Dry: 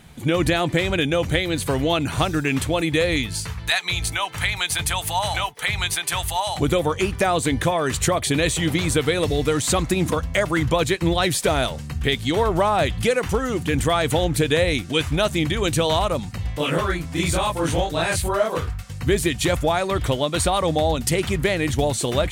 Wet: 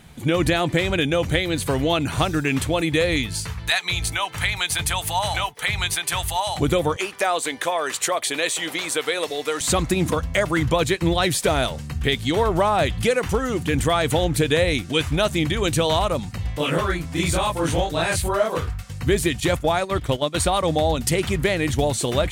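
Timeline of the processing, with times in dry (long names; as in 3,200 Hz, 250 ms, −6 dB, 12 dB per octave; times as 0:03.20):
0:06.96–0:09.61: high-pass filter 510 Hz
0:19.40–0:20.64: noise gate −24 dBFS, range −10 dB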